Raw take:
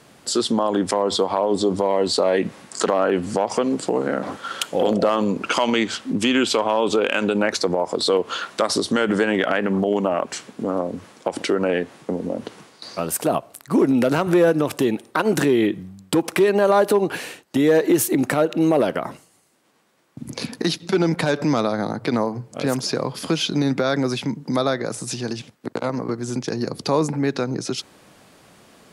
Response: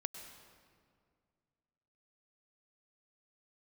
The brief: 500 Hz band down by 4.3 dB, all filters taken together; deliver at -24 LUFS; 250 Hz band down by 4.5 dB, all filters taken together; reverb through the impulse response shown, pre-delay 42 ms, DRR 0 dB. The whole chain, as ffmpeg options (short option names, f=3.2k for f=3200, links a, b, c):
-filter_complex "[0:a]equalizer=f=250:t=o:g=-4.5,equalizer=f=500:t=o:g=-4,asplit=2[a][b];[1:a]atrim=start_sample=2205,adelay=42[c];[b][c]afir=irnorm=-1:irlink=0,volume=1.5dB[d];[a][d]amix=inputs=2:normalize=0,volume=-2.5dB"